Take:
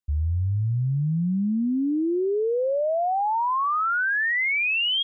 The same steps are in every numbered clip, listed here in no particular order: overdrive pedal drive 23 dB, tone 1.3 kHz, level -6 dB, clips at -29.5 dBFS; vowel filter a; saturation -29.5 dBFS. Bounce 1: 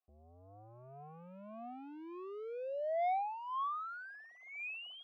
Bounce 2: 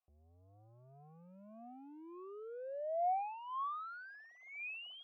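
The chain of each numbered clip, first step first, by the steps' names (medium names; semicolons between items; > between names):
overdrive pedal > vowel filter > saturation; overdrive pedal > saturation > vowel filter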